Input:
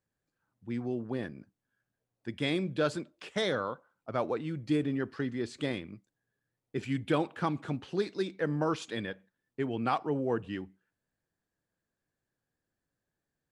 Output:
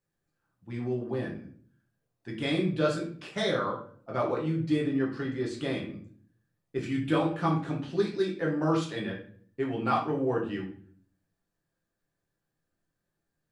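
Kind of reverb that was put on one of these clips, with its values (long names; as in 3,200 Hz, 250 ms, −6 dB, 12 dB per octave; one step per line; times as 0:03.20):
rectangular room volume 53 cubic metres, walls mixed, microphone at 0.84 metres
level −2 dB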